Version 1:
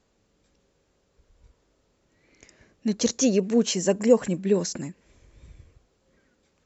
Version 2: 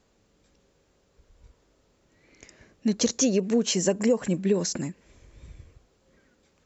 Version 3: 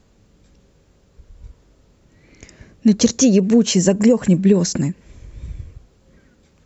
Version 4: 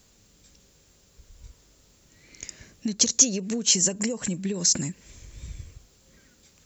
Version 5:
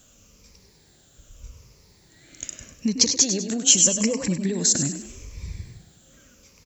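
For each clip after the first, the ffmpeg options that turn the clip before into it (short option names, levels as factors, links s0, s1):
-af "acompressor=threshold=0.0891:ratio=6,volume=1.33"
-af "bass=f=250:g=9,treble=f=4000:g=0,volume=2"
-af "acompressor=threshold=0.112:ratio=6,crystalizer=i=6.5:c=0,volume=0.422"
-filter_complex "[0:a]afftfilt=real='re*pow(10,9/40*sin(2*PI*(0.85*log(max(b,1)*sr/1024/100)/log(2)-(-0.82)*(pts-256)/sr)))':imag='im*pow(10,9/40*sin(2*PI*(0.85*log(max(b,1)*sr/1024/100)/log(2)-(-0.82)*(pts-256)/sr)))':win_size=1024:overlap=0.75,asplit=5[s0][s1][s2][s3][s4];[s1]adelay=99,afreqshift=35,volume=0.335[s5];[s2]adelay=198,afreqshift=70,volume=0.138[s6];[s3]adelay=297,afreqshift=105,volume=0.0562[s7];[s4]adelay=396,afreqshift=140,volume=0.0232[s8];[s0][s5][s6][s7][s8]amix=inputs=5:normalize=0,volume=1.26"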